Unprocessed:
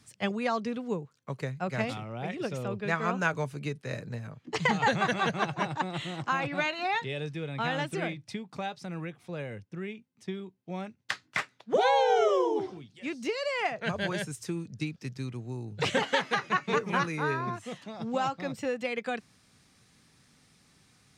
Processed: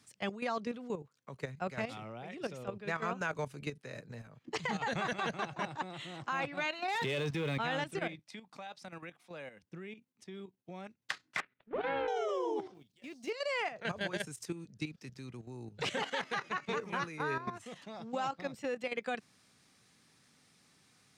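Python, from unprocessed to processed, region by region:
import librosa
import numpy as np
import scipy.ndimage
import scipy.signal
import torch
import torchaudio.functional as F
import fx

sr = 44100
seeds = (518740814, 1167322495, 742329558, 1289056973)

y = fx.chain(x, sr, fx.leveller(passes=2),
    fx.env_flatten(amount_pct=50), at=(6.88, 7.58))
y = fx.chain(y, sr, fx.highpass(hz=240.0, slope=12),
    fx.peak_eq(hz=400.0, db=-8.0, octaves=0.54), at=(8.19, 9.63))
y = fx.chain(y, sr, fx.halfwave_gain(db=-12.0),
    fx.lowpass(hz=2700.0, slope=24),
    fx.peak_eq(hz=870.0, db=-7.5, octaves=0.98), at=(11.4, 12.08))
y = fx.chain(y, sr, fx.law_mismatch(coded='A'),
    fx.peak_eq(hz=1400.0, db=-5.5, octaves=1.3), at=(12.74, 13.3))
y = fx.highpass(y, sr, hz=190.0, slope=6)
y = fx.level_steps(y, sr, step_db=11)
y = y * 10.0 ** (-1.0 / 20.0)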